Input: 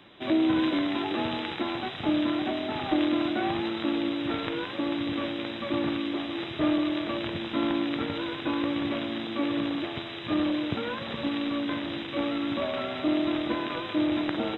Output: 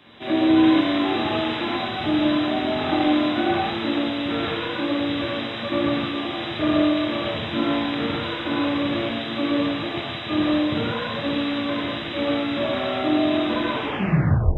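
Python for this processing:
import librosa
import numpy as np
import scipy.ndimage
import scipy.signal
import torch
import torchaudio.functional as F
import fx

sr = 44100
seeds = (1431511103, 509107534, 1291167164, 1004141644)

y = fx.tape_stop_end(x, sr, length_s=0.88)
y = fx.rev_gated(y, sr, seeds[0], gate_ms=210, shape='flat', drr_db=-6.0)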